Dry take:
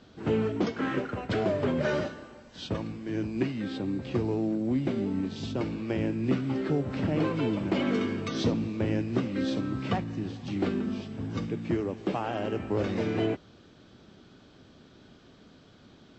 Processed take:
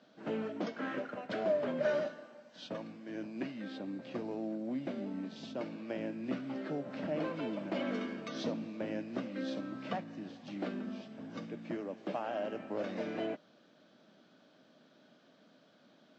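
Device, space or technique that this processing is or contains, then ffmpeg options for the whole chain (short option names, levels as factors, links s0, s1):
television speaker: -af "highpass=f=180:w=0.5412,highpass=f=180:w=1.3066,equalizer=f=390:t=q:w=4:g=-6,equalizer=f=610:t=q:w=4:g=9,equalizer=f=1600:t=q:w=4:g=3,lowpass=f=7000:w=0.5412,lowpass=f=7000:w=1.3066,volume=0.376"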